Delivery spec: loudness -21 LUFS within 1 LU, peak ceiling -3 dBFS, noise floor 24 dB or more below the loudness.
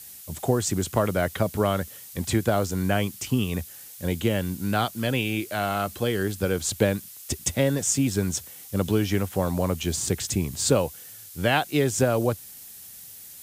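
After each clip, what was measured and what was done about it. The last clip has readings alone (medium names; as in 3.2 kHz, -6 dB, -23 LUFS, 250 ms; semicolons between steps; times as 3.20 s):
noise floor -44 dBFS; noise floor target -50 dBFS; loudness -25.5 LUFS; peak level -6.5 dBFS; loudness target -21.0 LUFS
-> noise reduction 6 dB, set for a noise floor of -44 dBFS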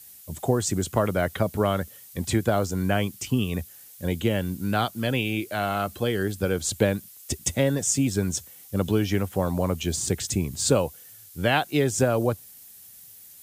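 noise floor -48 dBFS; noise floor target -50 dBFS
-> noise reduction 6 dB, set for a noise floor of -48 dBFS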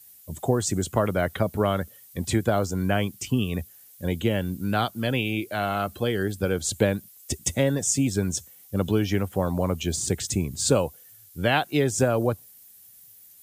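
noise floor -51 dBFS; loudness -26.0 LUFS; peak level -6.5 dBFS; loudness target -21.0 LUFS
-> trim +5 dB; peak limiter -3 dBFS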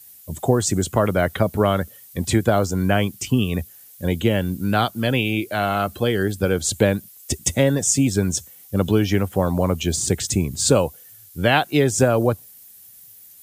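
loudness -21.0 LUFS; peak level -3.0 dBFS; noise floor -46 dBFS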